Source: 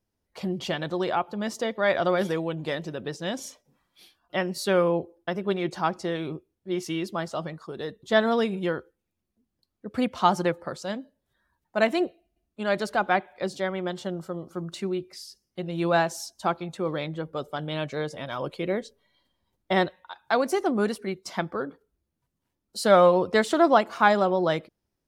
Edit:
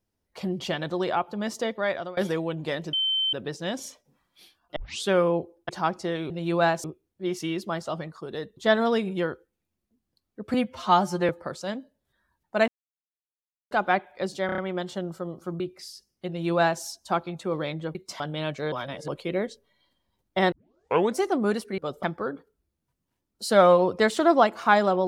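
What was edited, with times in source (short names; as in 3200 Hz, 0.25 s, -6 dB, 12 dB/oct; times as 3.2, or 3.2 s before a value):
1.69–2.17 fade out, to -23 dB
2.93 add tone 3090 Hz -22 dBFS 0.40 s
4.36 tape start 0.32 s
5.29–5.69 cut
10–10.5 stretch 1.5×
11.89–12.92 mute
13.67 stutter 0.03 s, 5 plays
14.69–14.94 cut
15.62–16.16 copy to 6.3
17.29–17.54 swap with 21.12–21.37
18.06–18.42 reverse
19.86 tape start 0.66 s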